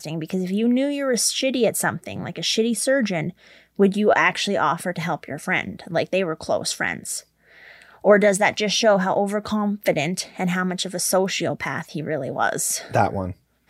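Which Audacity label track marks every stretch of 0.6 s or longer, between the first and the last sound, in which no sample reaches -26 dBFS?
7.190000	8.040000	silence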